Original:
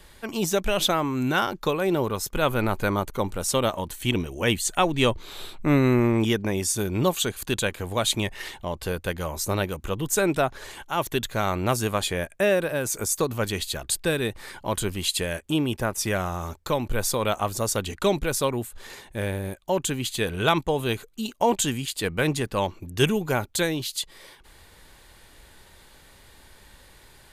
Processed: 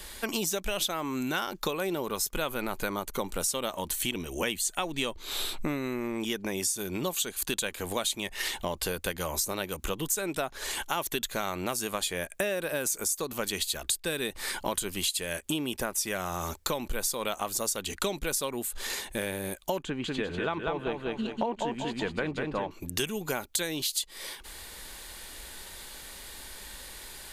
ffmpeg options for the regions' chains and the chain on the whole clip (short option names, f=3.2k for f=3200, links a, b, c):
-filter_complex "[0:a]asettb=1/sr,asplit=3[a][b][c];[a]atrim=end=19.824[d];[b]atrim=start=19.82:end=22.71,asetpts=PTS-STARTPTS,afade=t=in:d=0.004:c=qsin,afade=t=out:st=2.886:d=0.004:c=qsin,lowpass=1.8k,aecho=1:1:194|388|582|776:0.631|0.221|0.0773|0.0271,atrim=end_sample=127449[e];[c]atrim=start=22.706[f];[d][e]acrossfade=d=0.004:c1=hsin:c2=qsin[g];[g][f]acrossfade=d=0.004:c1=qsin:c2=hsin,highshelf=f=3k:g=9,acompressor=threshold=-31dB:ratio=10,equalizer=f=110:w=2.6:g=-14.5,volume=4dB"